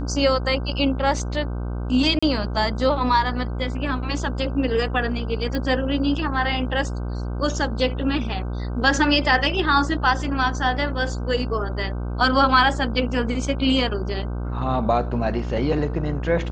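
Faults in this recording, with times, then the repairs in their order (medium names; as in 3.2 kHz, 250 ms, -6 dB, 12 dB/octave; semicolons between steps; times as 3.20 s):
buzz 60 Hz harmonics 26 -27 dBFS
2.19–2.23 s: dropout 35 ms
5.55 s: pop -15 dBFS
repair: de-click; de-hum 60 Hz, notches 26; interpolate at 2.19 s, 35 ms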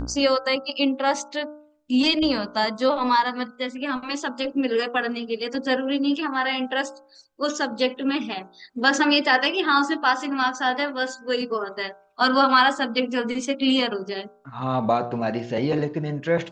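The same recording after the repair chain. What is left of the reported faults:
nothing left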